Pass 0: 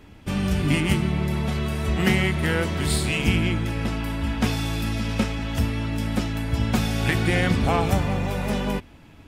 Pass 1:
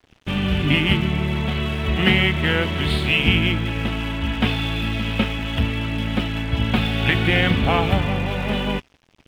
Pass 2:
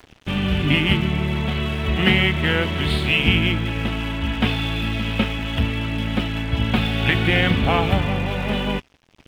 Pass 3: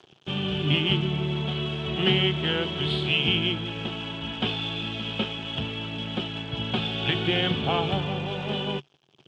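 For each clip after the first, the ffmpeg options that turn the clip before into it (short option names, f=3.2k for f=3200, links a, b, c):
-af "highshelf=f=4.5k:t=q:w=3:g=-13,aeval=exprs='sgn(val(0))*max(abs(val(0))-0.00668,0)':c=same,volume=2.5dB"
-af "acompressor=mode=upward:threshold=-39dB:ratio=2.5"
-af "highpass=140,equalizer=f=140:t=q:w=4:g=9,equalizer=f=260:t=q:w=4:g=-5,equalizer=f=380:t=q:w=4:g=8,equalizer=f=780:t=q:w=4:g=3,equalizer=f=2k:t=q:w=4:g=-8,equalizer=f=3.2k:t=q:w=4:g=9,lowpass=f=7.5k:w=0.5412,lowpass=f=7.5k:w=1.3066,volume=-7.5dB"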